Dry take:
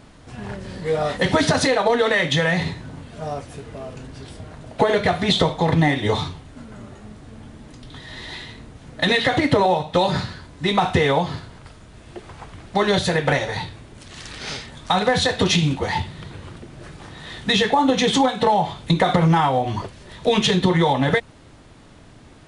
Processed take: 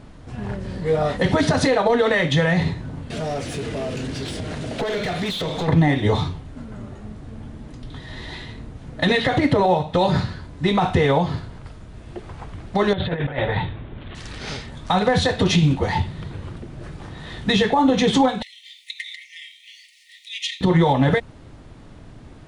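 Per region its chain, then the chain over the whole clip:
3.1–5.68 bell 1000 Hz -13 dB 1.8 oct + compressor 3:1, threshold -36 dBFS + overdrive pedal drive 28 dB, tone 5400 Hz, clips at -17 dBFS
12.93–14.15 elliptic low-pass 3600 Hz + negative-ratio compressor -24 dBFS, ratio -0.5
18.42–20.61 requantised 10-bit, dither none + compressor 3:1, threshold -18 dBFS + brick-wall FIR high-pass 1800 Hz
whole clip: tilt -1.5 dB/oct; maximiser +7 dB; gain -7 dB

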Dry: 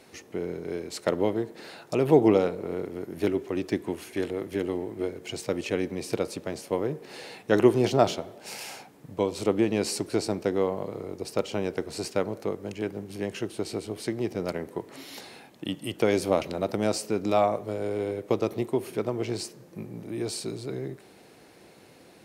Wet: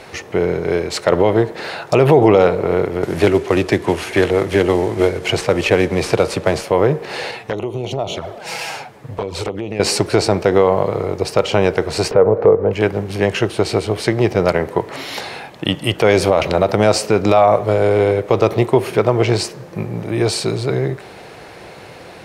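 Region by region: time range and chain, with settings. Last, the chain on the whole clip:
3.03–6.63 CVSD 64 kbps + three-band squash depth 40%
7.31–9.8 envelope flanger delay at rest 11.1 ms, full sweep at -19.5 dBFS + compressor, threshold -35 dBFS
12.11–12.73 LPF 1200 Hz + bell 460 Hz +10.5 dB 0.27 oct + upward compressor, threshold -28 dBFS
whole clip: LPF 2300 Hz 6 dB/oct; bell 260 Hz -11.5 dB 1.3 oct; maximiser +22 dB; gain -1 dB

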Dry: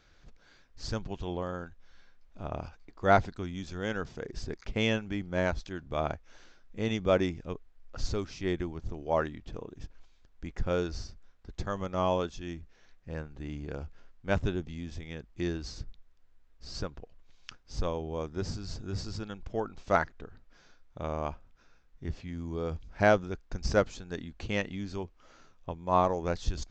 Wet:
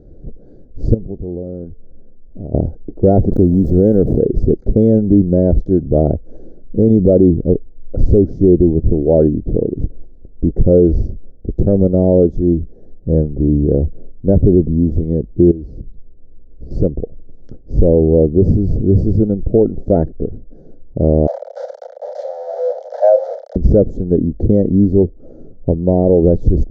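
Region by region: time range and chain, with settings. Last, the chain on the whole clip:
0.94–2.54 compressor 3:1, threshold -44 dBFS + high shelf 2500 Hz -7.5 dB + resonator 220 Hz, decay 0.76 s, mix 40%
3.31–4.21 level-crossing sampler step -46 dBFS + high shelf 6100 Hz +7 dB + backwards sustainer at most 40 dB/s
15.51–16.71 compressor 16:1, threshold -47 dBFS + air absorption 76 m
21.27–23.56 delta modulation 32 kbps, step -23.5 dBFS + steep high-pass 530 Hz 96 dB/oct + doubler 30 ms -9 dB
whole clip: inverse Chebyshev low-pass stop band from 1000 Hz, stop band 40 dB; low shelf 160 Hz -4.5 dB; maximiser +29 dB; gain -1 dB

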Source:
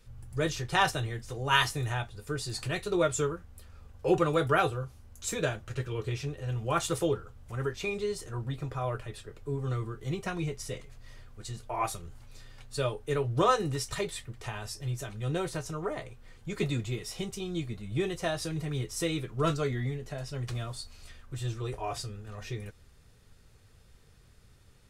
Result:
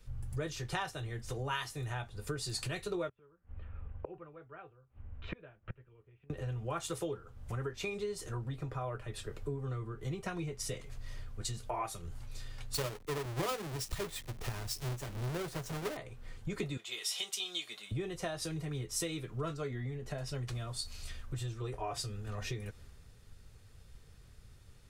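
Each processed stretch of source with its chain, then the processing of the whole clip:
3.09–6.3 steep low-pass 2900 Hz + flipped gate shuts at -30 dBFS, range -29 dB
12.74–15.97 half-waves squared off + three-band expander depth 40%
16.77–17.91 HPF 780 Hz + bell 3300 Hz +7 dB 0.51 oct
whole clip: compressor 8:1, threshold -42 dBFS; three-band expander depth 40%; gain +6.5 dB

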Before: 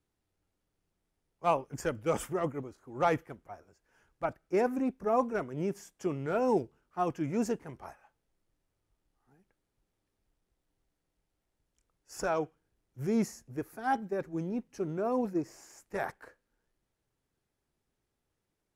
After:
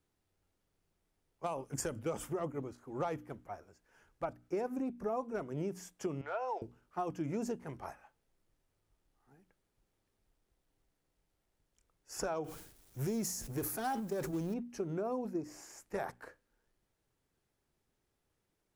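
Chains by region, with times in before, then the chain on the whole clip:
1.46–1.99 bell 9300 Hz +9.5 dB 1.2 oct + compressor, threshold -28 dBFS
6.21–6.62 HPF 650 Hz 24 dB/oct + air absorption 180 m
12.44–14.54 G.711 law mismatch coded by mu + high shelf 4500 Hz +10.5 dB + sustainer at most 82 dB/s
whole clip: notches 60/120/180/240/300 Hz; dynamic EQ 1900 Hz, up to -5 dB, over -49 dBFS, Q 1.3; compressor 6:1, threshold -35 dBFS; gain +1.5 dB

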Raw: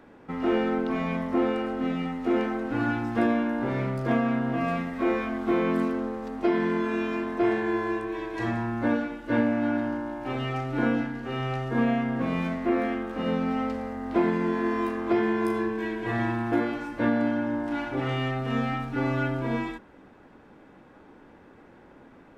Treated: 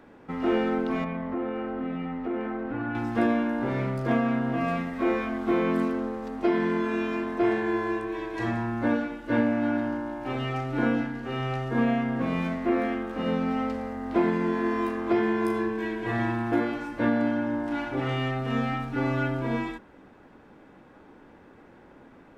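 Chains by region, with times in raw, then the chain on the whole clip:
1.04–2.95 LPF 2300 Hz + compressor 3:1, threshold -28 dBFS
whole clip: dry

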